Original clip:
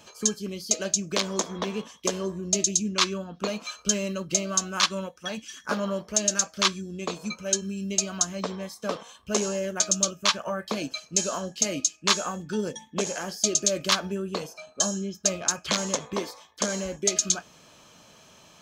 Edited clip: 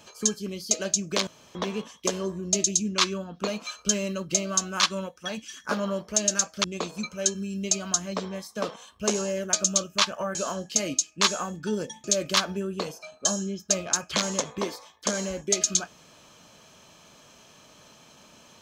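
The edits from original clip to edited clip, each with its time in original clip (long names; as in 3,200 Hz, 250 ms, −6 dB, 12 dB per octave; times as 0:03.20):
0:01.27–0:01.55: fill with room tone
0:06.64–0:06.91: remove
0:10.62–0:11.21: remove
0:12.90–0:13.59: remove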